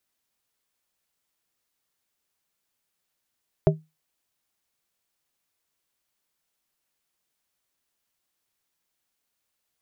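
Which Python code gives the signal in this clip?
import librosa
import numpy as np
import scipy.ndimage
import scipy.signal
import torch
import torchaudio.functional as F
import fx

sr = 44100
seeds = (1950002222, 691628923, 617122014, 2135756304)

y = fx.strike_glass(sr, length_s=0.89, level_db=-13.0, body='plate', hz=157.0, decay_s=0.23, tilt_db=0.5, modes=3)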